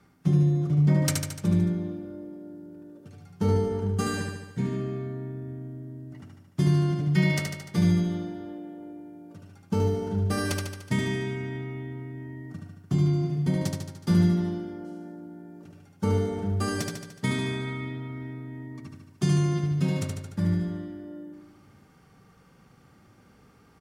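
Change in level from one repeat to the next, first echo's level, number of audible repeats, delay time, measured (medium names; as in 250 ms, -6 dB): -4.5 dB, -3.5 dB, 7, 74 ms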